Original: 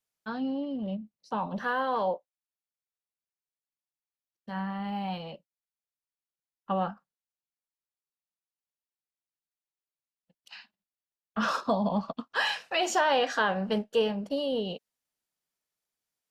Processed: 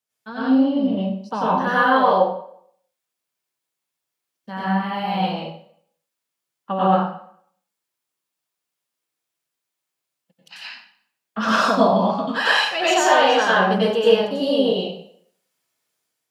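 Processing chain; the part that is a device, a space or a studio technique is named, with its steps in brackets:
0:04.60–0:05.20: notch filter 6,800 Hz, Q 10
far laptop microphone (convolution reverb RT60 0.60 s, pre-delay 87 ms, DRR −8 dB; high-pass filter 130 Hz; automatic gain control gain up to 5 dB)

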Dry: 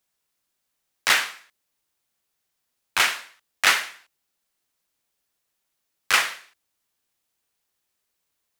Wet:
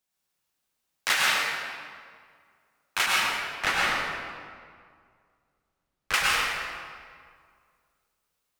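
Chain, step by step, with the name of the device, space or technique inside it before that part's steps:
0:03.06–0:06.14: spectral tilt −3 dB per octave
stairwell (convolution reverb RT60 2.0 s, pre-delay 94 ms, DRR −4.5 dB)
level −6 dB

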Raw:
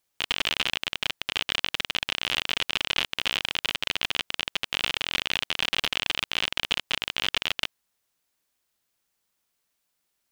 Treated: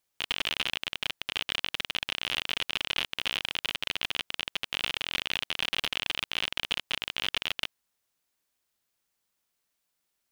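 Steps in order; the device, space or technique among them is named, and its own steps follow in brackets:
parallel distortion (in parallel at −5.5 dB: hard clipping −16 dBFS, distortion −10 dB)
on the sum: level −6.5 dB

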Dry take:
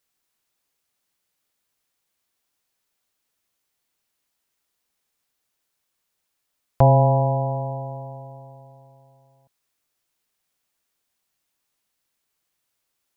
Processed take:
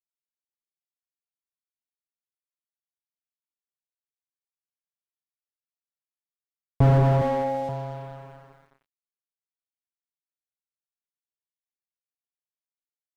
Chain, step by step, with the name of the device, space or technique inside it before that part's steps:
0:07.21–0:07.69: comb filter 3.6 ms, depth 91%
early transistor amplifier (dead-zone distortion −43 dBFS; slew-rate limiting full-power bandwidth 50 Hz)

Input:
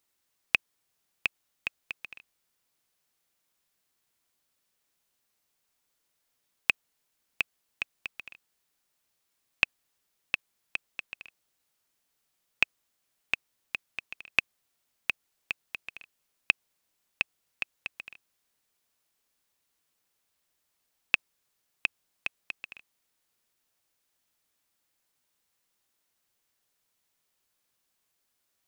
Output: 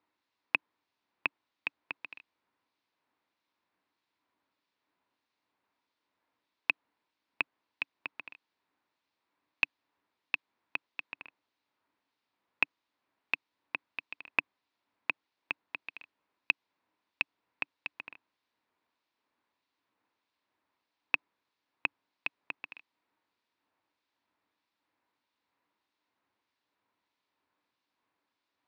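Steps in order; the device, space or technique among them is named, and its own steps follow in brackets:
guitar amplifier with harmonic tremolo (two-band tremolo in antiphase 1.6 Hz, depth 50%, crossover 2,400 Hz; soft clipping −11.5 dBFS, distortion −15 dB; loudspeaker in its box 100–3,900 Hz, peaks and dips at 150 Hz −6 dB, 290 Hz +8 dB, 970 Hz +8 dB, 3,100 Hz −5 dB)
level +2.5 dB

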